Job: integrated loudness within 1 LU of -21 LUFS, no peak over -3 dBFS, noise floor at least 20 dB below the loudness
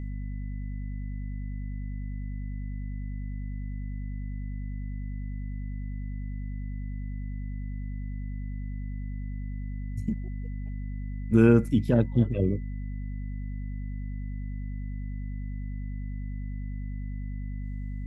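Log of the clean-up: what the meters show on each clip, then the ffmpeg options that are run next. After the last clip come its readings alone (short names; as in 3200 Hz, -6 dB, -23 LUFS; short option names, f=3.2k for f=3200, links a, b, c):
hum 50 Hz; harmonics up to 250 Hz; hum level -31 dBFS; steady tone 2000 Hz; tone level -57 dBFS; loudness -32.0 LUFS; peak -6.5 dBFS; loudness target -21.0 LUFS
-> -af "bandreject=f=50:t=h:w=6,bandreject=f=100:t=h:w=6,bandreject=f=150:t=h:w=6,bandreject=f=200:t=h:w=6,bandreject=f=250:t=h:w=6"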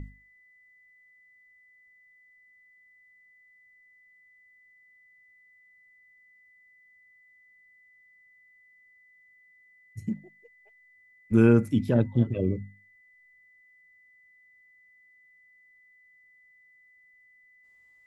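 hum none; steady tone 2000 Hz; tone level -57 dBFS
-> -af "bandreject=f=2k:w=30"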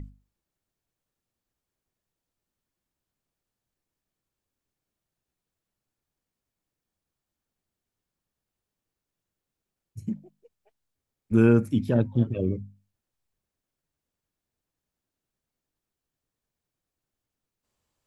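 steady tone none; loudness -24.5 LUFS; peak -7.0 dBFS; loudness target -21.0 LUFS
-> -af "volume=3.5dB"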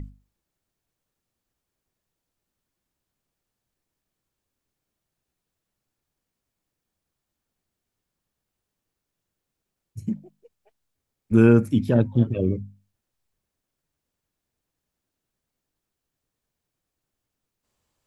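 loudness -21.0 LUFS; peak -3.5 dBFS; noise floor -84 dBFS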